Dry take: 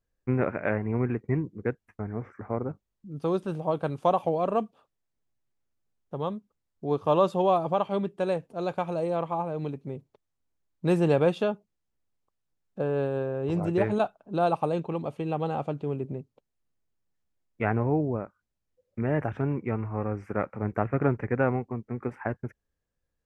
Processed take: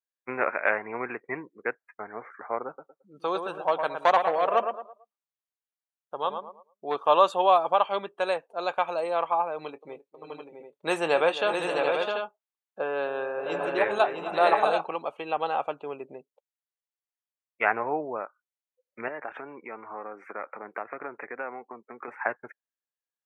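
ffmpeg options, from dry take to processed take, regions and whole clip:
ffmpeg -i in.wav -filter_complex "[0:a]asettb=1/sr,asplit=3[link_01][link_02][link_03];[link_01]atrim=end=2.674[link_04];[link_02]atrim=start=2.67:end=6.97,asetpts=PTS-STARTPTS,afade=type=in:duration=0.004:curve=qsin,afade=type=out:start_time=4.296:duration=0.004:curve=qsin,aeval=exprs='clip(val(0),-1,0.0794)':channel_layout=same,asplit=2[link_05][link_06];[link_06]adelay=111,lowpass=frequency=2600:poles=1,volume=-6.5dB,asplit=2[link_07][link_08];[link_08]adelay=111,lowpass=frequency=2600:poles=1,volume=0.37,asplit=2[link_09][link_10];[link_10]adelay=111,lowpass=frequency=2600:poles=1,volume=0.37,asplit=2[link_11][link_12];[link_12]adelay=111,lowpass=frequency=2600:poles=1,volume=0.37[link_13];[link_05][link_07][link_09][link_11][link_13]amix=inputs=5:normalize=0,atrim=end_sample=189630[link_14];[link_03]atrim=start=6.966[link_15];[link_04][link_14]acrossfade=duration=0.004:curve1=hsin:curve2=qsin[link_16];[link_16][link_15]acrossfade=duration=0.004:curve1=qsin:curve2=hsin,asettb=1/sr,asplit=3[link_17][link_18][link_19];[link_17]atrim=end=9.564[link_20];[link_18]atrim=start=9.56:end=14.91,asetpts=PTS-STARTPTS,afade=type=in:duration=0.004:curve=qsin,afade=type=out:start_time=5.346:duration=0.004:curve=qsin,asplit=2[link_21][link_22];[link_22]adelay=25,volume=-13.5dB[link_23];[link_21][link_23]amix=inputs=2:normalize=0,atrim=end_sample=235935,aecho=1:1:264|581|658|738:0.2|0.266|0.562|0.473,atrim=end_sample=235935[link_24];[link_19]atrim=start=14.906[link_25];[link_20][link_24]acrossfade=duration=0.004:curve1=hsin:curve2=qsin[link_26];[link_26][link_25]acrossfade=duration=0.004:curve1=qsin:curve2=hsin,asettb=1/sr,asplit=3[link_27][link_28][link_29];[link_27]atrim=end=19.084[link_30];[link_28]atrim=start=19.08:end=22.08,asetpts=PTS-STARTPTS,afade=type=in:duration=0.004:curve=qsin,afade=type=out:start_time=2.996:duration=0.004:curve=qsin,highpass=120,equalizer=frequency=290:width_type=o:width=2:gain=4,acompressor=threshold=-34dB:ratio=3:attack=3.2:release=140:knee=1:detection=peak[link_31];[link_29]atrim=start=22.076[link_32];[link_30][link_31]acrossfade=duration=0.004:curve1=hsin:curve2=qsin[link_33];[link_33][link_32]acrossfade=duration=0.004:curve1=qsin:curve2=hsin,highpass=840,bandreject=frequency=5100:width=8.7,afftdn=noise_reduction=18:noise_floor=-58,volume=8.5dB" out.wav

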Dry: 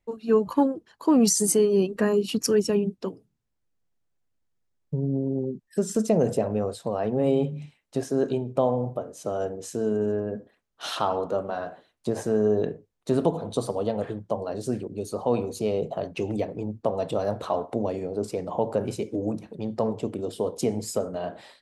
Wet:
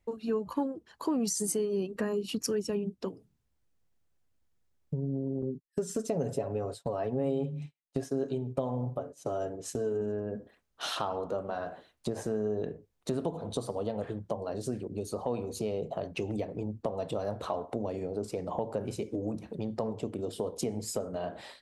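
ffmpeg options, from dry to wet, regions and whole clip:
ffmpeg -i in.wav -filter_complex "[0:a]asettb=1/sr,asplit=3[link_01][link_02][link_03];[link_01]atrim=end=5.424[link_04];[link_02]atrim=start=5.42:end=10.01,asetpts=PTS-STARTPTS,afade=type=in:duration=0.004:curve=qsin,afade=type=out:start_time=4.586:duration=0.004:curve=qsin,aecho=1:1:7.2:0.54,atrim=end_sample=202419,agate=range=-33dB:threshold=-35dB:ratio=3:release=100:detection=peak[link_05];[link_03]atrim=start=10.006[link_06];[link_04][link_05]acrossfade=duration=0.004:curve1=hsin:curve2=qsin[link_07];[link_07][link_06]acrossfade=duration=0.004:curve1=qsin:curve2=hsin,equalizer=frequency=65:width_type=o:width=0.77:gain=7,acompressor=threshold=-36dB:ratio=2.5,volume=2dB" out.wav

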